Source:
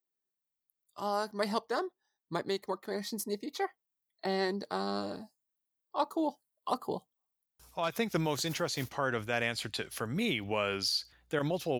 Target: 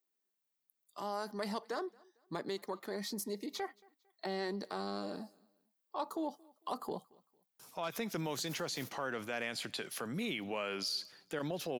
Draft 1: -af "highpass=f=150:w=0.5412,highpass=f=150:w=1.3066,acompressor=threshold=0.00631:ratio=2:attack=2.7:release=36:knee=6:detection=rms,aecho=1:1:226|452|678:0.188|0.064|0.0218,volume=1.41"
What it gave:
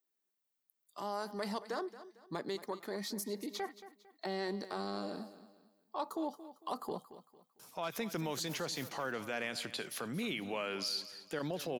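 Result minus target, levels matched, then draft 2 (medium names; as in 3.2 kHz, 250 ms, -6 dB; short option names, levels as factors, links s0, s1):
echo-to-direct +11.5 dB
-af "highpass=f=150:w=0.5412,highpass=f=150:w=1.3066,acompressor=threshold=0.00631:ratio=2:attack=2.7:release=36:knee=6:detection=rms,aecho=1:1:226|452:0.0501|0.017,volume=1.41"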